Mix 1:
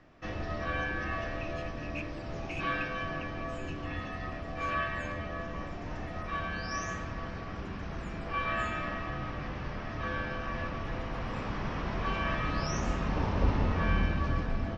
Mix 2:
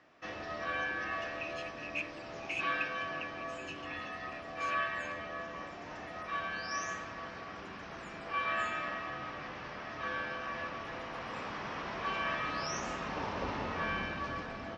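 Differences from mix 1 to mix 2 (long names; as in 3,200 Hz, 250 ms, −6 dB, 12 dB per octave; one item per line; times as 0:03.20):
speech +4.5 dB
background: add high-pass filter 590 Hz 6 dB per octave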